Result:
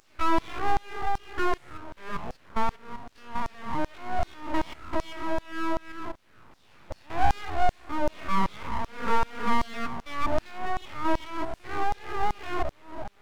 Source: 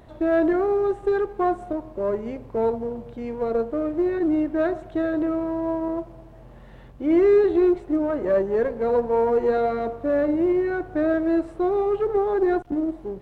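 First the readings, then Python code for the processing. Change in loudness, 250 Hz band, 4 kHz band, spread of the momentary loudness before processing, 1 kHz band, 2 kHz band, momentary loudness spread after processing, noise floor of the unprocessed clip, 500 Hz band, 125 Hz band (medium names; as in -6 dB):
-8.0 dB, -12.5 dB, no reading, 9 LU, +2.0 dB, +0.5 dB, 12 LU, -45 dBFS, -15.0 dB, +1.5 dB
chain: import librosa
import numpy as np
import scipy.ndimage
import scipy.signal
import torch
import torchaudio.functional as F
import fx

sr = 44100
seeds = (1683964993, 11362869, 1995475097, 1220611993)

y = fx.spec_steps(x, sr, hold_ms=200)
y = fx.filter_lfo_highpass(y, sr, shape='saw_down', hz=2.6, low_hz=240.0, high_hz=3100.0, q=1.5)
y = np.abs(y)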